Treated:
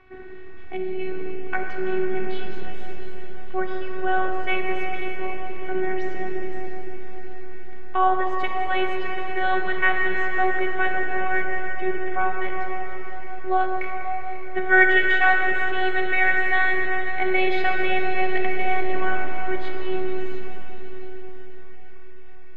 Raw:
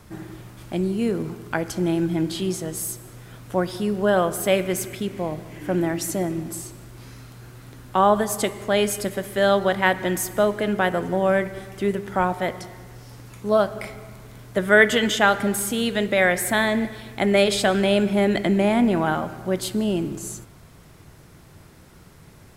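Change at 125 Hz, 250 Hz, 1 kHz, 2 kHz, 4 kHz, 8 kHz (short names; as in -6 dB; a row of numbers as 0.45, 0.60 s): -10.0 dB, -8.0 dB, +1.5 dB, +3.5 dB, -7.0 dB, under -30 dB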